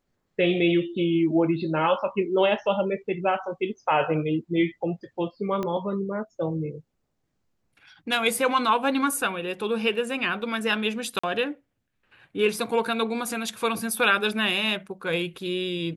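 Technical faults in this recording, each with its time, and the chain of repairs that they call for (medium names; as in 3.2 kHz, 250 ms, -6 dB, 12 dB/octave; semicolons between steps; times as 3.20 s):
5.63 s: pop -17 dBFS
11.19–11.23 s: dropout 45 ms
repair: de-click; interpolate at 11.19 s, 45 ms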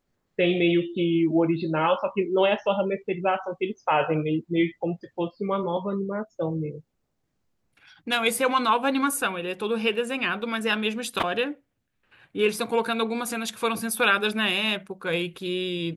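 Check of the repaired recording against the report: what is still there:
5.63 s: pop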